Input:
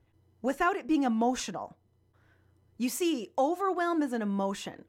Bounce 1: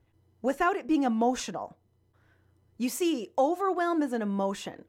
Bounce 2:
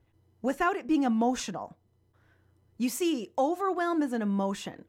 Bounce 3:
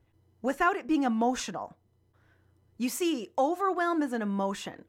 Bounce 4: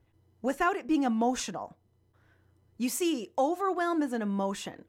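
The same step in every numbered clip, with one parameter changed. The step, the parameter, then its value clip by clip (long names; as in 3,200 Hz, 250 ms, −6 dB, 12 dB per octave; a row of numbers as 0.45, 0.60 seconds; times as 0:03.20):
dynamic equaliser, frequency: 520, 170, 1,400, 9,200 Hertz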